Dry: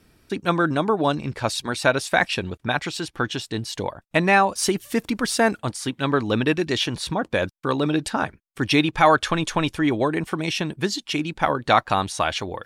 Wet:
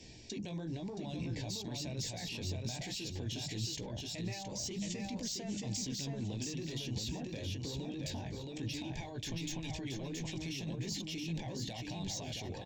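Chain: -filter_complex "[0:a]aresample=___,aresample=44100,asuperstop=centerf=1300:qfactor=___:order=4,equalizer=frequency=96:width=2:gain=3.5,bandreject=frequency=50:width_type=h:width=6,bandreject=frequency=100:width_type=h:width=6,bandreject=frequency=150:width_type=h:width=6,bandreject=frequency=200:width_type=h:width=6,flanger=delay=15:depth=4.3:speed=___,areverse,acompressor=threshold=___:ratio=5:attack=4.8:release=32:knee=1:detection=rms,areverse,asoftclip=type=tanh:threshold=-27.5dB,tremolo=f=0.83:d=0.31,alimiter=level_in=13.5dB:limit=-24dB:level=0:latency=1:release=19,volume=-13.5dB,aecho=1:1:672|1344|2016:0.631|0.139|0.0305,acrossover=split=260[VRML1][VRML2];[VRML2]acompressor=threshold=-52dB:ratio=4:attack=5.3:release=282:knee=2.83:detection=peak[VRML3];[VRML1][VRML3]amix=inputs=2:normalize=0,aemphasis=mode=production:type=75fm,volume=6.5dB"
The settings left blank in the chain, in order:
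16000, 1.2, 1, -37dB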